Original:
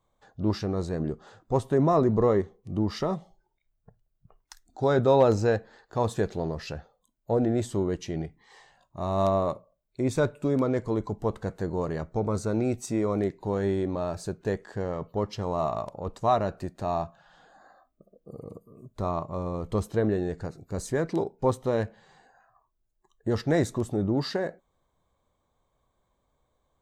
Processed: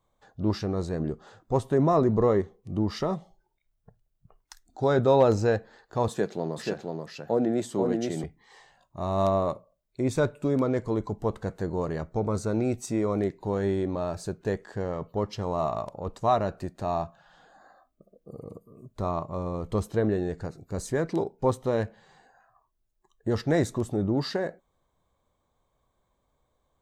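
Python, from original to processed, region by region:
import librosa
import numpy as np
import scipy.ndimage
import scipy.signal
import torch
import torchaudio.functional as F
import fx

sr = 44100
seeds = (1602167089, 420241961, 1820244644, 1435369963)

y = fx.chain(x, sr, fx.highpass(hz=150.0, slope=24),
    fx.echo_single(ms=483, db=-3.5), at=(6.08, 8.24))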